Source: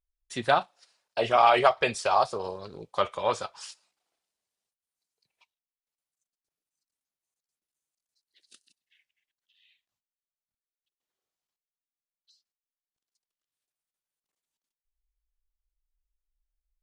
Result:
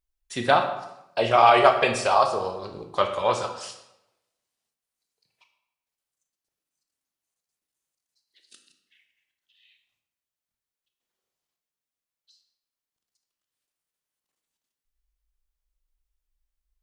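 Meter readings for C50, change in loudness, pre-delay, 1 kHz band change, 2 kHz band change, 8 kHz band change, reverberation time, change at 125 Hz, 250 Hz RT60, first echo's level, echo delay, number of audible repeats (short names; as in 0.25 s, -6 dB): 8.0 dB, +4.0 dB, 20 ms, +4.0 dB, +4.0 dB, +4.0 dB, 0.90 s, +5.5 dB, 0.90 s, none, none, none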